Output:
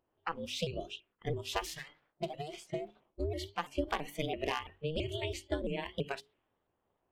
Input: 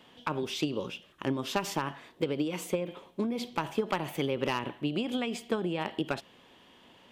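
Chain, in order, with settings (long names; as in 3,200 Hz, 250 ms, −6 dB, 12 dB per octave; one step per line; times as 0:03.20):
0:01.65–0:02.96: lower of the sound and its delayed copy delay 1.7 ms
ring modulation 150 Hz
low-pass that shuts in the quiet parts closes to 960 Hz, open at −33.5 dBFS
noise reduction from a noise print of the clip's start 17 dB
mains-hum notches 50/100/150/200/250/300/350/400 Hz
pitch modulation by a square or saw wave saw up 3 Hz, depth 160 cents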